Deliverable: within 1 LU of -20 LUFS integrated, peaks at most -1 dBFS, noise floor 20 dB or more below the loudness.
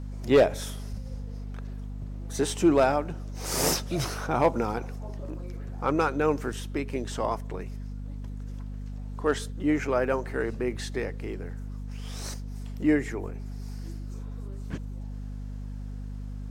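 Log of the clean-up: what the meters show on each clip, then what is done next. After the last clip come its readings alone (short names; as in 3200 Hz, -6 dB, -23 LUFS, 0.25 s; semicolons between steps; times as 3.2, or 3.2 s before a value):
hum 50 Hz; harmonics up to 250 Hz; hum level -34 dBFS; loudness -30.0 LUFS; peak -11.0 dBFS; loudness target -20.0 LUFS
-> notches 50/100/150/200/250 Hz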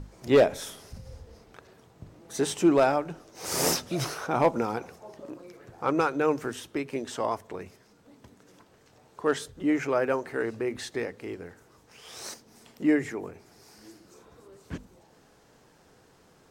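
hum none; loudness -28.0 LUFS; peak -11.0 dBFS; loudness target -20.0 LUFS
-> gain +8 dB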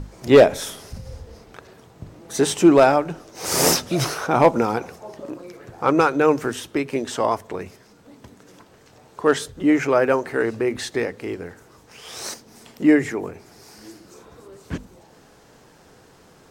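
loudness -20.0 LUFS; peak -3.0 dBFS; noise floor -52 dBFS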